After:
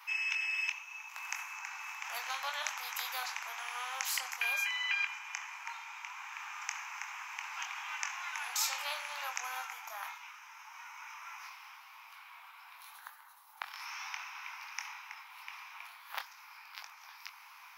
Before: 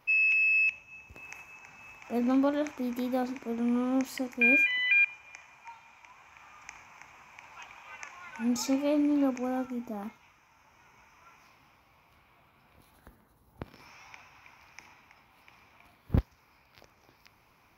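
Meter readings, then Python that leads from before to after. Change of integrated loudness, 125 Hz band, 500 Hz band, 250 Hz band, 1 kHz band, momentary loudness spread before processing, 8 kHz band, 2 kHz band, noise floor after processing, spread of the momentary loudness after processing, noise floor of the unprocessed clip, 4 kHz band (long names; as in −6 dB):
−11.0 dB, below −40 dB, −20.5 dB, below −40 dB, +1.0 dB, 23 LU, +6.5 dB, −7.0 dB, −55 dBFS, 18 LU, −64 dBFS, +3.0 dB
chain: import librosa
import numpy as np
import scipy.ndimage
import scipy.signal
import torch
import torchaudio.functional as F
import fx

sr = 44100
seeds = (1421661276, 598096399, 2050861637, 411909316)

y = scipy.signal.sosfilt(scipy.signal.butter(8, 860.0, 'highpass', fs=sr, output='sos'), x)
y = fx.chorus_voices(y, sr, voices=6, hz=0.75, base_ms=23, depth_ms=2.7, mix_pct=30)
y = fx.spectral_comp(y, sr, ratio=2.0)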